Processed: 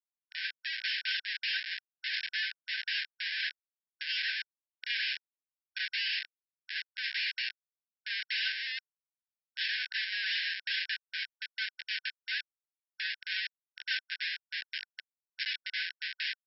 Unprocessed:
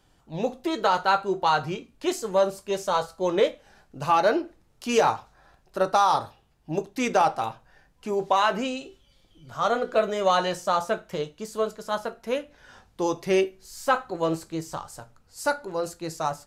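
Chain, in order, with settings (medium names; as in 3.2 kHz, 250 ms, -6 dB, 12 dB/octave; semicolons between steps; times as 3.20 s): Schmitt trigger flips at -30.5 dBFS; brick-wall FIR band-pass 1.5–5.5 kHz; trim +3 dB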